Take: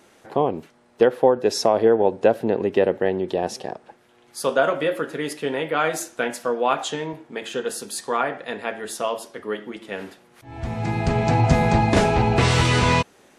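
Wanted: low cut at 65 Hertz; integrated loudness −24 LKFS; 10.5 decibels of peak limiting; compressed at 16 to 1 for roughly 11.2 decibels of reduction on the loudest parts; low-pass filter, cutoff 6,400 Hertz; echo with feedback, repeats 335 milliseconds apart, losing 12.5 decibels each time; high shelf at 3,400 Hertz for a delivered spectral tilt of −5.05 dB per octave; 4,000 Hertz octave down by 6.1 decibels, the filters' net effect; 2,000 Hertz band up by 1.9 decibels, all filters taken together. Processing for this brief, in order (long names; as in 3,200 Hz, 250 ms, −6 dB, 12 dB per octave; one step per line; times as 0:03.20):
high-pass filter 65 Hz
low-pass filter 6,400 Hz
parametric band 2,000 Hz +5.5 dB
high-shelf EQ 3,400 Hz −5 dB
parametric band 4,000 Hz −6.5 dB
downward compressor 16 to 1, threshold −22 dBFS
brickwall limiter −20.5 dBFS
repeating echo 335 ms, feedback 24%, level −12.5 dB
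level +8 dB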